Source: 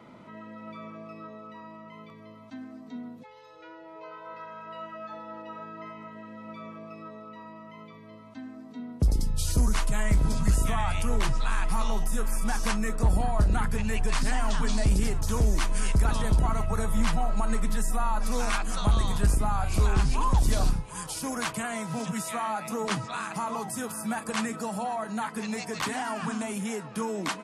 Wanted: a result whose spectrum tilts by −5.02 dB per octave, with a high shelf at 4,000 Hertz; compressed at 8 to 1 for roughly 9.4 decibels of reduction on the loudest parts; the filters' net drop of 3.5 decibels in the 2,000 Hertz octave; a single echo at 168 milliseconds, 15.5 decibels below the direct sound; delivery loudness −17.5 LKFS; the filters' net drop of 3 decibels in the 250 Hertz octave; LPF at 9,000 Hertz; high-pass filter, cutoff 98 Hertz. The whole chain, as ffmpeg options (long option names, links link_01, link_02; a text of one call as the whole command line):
ffmpeg -i in.wav -af "highpass=98,lowpass=9000,equalizer=frequency=250:width_type=o:gain=-3.5,equalizer=frequency=2000:width_type=o:gain=-3,highshelf=frequency=4000:gain=-7,acompressor=threshold=-33dB:ratio=8,aecho=1:1:168:0.168,volume=21.5dB" out.wav